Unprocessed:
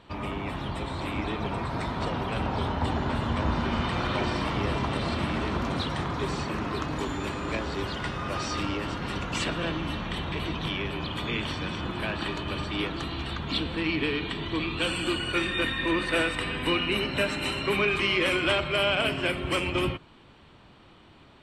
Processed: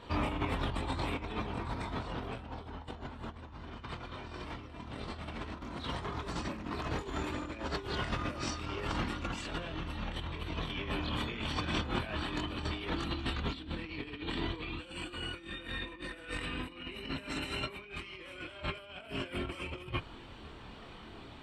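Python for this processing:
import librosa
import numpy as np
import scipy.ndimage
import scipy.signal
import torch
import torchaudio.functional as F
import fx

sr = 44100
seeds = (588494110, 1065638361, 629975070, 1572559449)

y = fx.chorus_voices(x, sr, voices=6, hz=0.28, base_ms=25, depth_ms=2.4, mix_pct=50)
y = fx.over_compress(y, sr, threshold_db=-37.0, ratio=-0.5)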